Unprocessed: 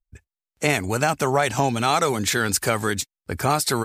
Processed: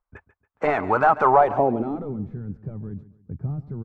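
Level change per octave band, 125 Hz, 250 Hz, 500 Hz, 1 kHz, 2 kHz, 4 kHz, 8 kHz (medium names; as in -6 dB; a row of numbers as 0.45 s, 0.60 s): -4.0 dB, -2.5 dB, +0.5 dB, +2.5 dB, -6.0 dB, under -25 dB, under -40 dB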